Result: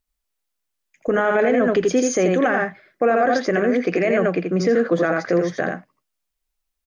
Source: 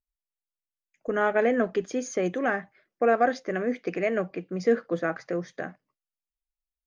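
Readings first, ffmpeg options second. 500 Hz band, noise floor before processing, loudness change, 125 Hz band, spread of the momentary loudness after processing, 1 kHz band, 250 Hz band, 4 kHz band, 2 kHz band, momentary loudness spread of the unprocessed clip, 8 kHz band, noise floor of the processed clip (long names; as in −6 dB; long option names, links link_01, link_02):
+7.5 dB, below −85 dBFS, +7.5 dB, +10.5 dB, 7 LU, +6.0 dB, +9.0 dB, +10.5 dB, +7.5 dB, 10 LU, can't be measured, −79 dBFS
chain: -filter_complex "[0:a]asplit=2[link_01][link_02];[link_02]aecho=0:1:83:0.596[link_03];[link_01][link_03]amix=inputs=2:normalize=0,alimiter=level_in=19.5dB:limit=-1dB:release=50:level=0:latency=1,volume=-8.5dB"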